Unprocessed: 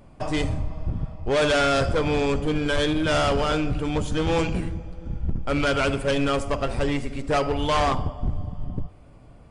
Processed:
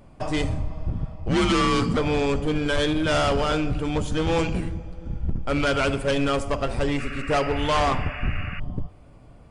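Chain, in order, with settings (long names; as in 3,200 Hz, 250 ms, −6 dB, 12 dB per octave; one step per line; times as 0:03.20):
0:01.28–0:01.97: frequency shifter −250 Hz
0:06.98–0:08.60: sound drawn into the spectrogram noise 1,100–2,900 Hz −37 dBFS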